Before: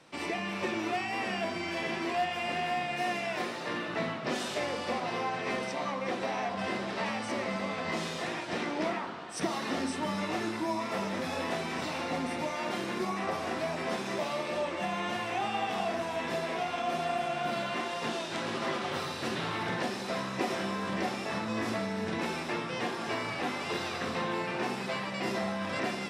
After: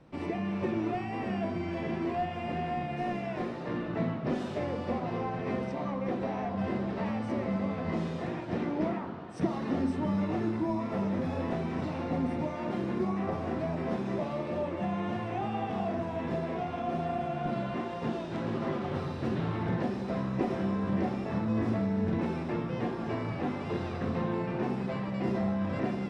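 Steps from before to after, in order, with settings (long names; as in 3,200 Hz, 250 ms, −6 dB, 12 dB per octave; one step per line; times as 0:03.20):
spectral tilt −4.5 dB per octave
level −4 dB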